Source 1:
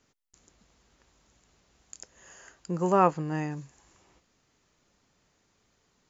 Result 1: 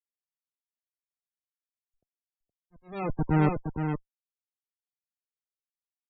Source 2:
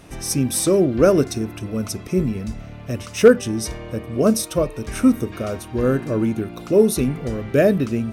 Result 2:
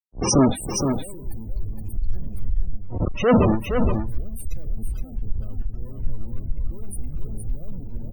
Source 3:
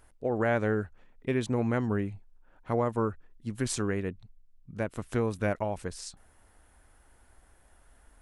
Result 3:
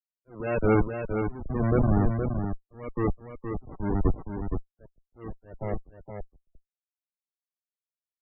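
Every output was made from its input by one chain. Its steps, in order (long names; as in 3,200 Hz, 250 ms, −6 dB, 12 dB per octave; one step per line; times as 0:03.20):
comparator with hysteresis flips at −28.5 dBFS
volume swells 464 ms
sine wavefolder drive 8 dB, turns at −17.5 dBFS
spectral peaks only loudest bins 32
on a send: single-tap delay 468 ms −4 dB
on the sum: multiband upward and downward expander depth 70%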